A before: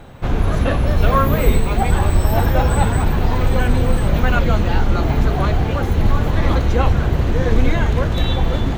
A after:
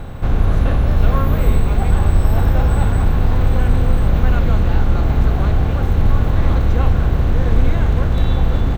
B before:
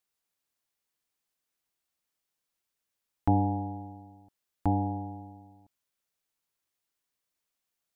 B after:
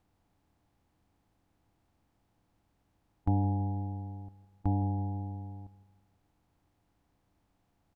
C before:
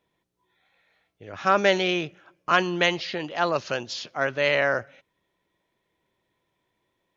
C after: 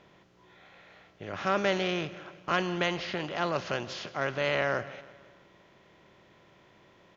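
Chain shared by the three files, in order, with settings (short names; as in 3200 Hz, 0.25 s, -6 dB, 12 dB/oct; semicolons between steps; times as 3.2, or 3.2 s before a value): per-bin compression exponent 0.6; low shelf 230 Hz +10.5 dB; on a send: feedback echo 0.164 s, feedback 53%, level -19 dB; on the sum: gain -10.5 dB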